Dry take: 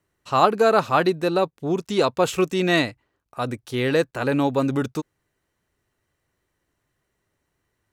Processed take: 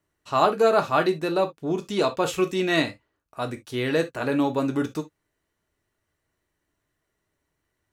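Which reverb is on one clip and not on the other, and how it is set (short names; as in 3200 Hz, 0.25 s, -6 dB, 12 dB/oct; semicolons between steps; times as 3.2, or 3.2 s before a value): non-linear reverb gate 90 ms falling, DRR 5.5 dB; gain -3.5 dB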